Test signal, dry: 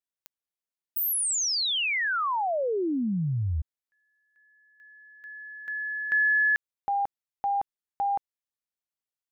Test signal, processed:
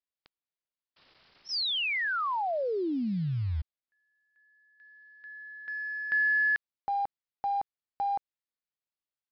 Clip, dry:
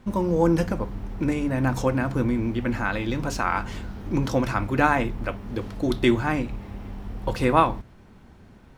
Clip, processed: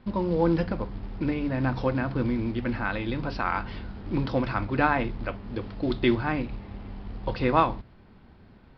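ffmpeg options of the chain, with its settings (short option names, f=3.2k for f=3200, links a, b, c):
-af "acrusher=bits=6:mode=log:mix=0:aa=0.000001,aresample=11025,aresample=44100,volume=-3dB"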